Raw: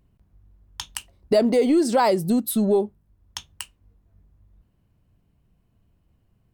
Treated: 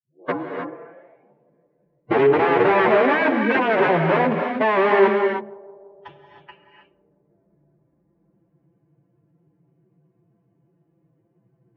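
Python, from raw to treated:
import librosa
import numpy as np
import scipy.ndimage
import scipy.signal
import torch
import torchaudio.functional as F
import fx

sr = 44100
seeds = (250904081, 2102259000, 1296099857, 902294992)

y = fx.tape_start_head(x, sr, length_s=1.92)
y = fx.tilt_eq(y, sr, slope=-3.5)
y = y + 0.58 * np.pad(y, (int(5.9 * sr / 1000.0), 0))[:len(y)]
y = fx.rider(y, sr, range_db=10, speed_s=2.0)
y = (np.mod(10.0 ** (12.0 / 20.0) * y + 1.0, 2.0) - 1.0) / 10.0 ** (12.0 / 20.0)
y = fx.stretch_vocoder(y, sr, factor=1.8)
y = fx.cabinet(y, sr, low_hz=160.0, low_slope=24, high_hz=2200.0, hz=(190.0, 390.0, 1300.0), db=(-9, 8, -5))
y = fx.echo_banded(y, sr, ms=168, feedback_pct=74, hz=530.0, wet_db=-22.5)
y = fx.rev_gated(y, sr, seeds[0], gate_ms=340, shape='rising', drr_db=3.5)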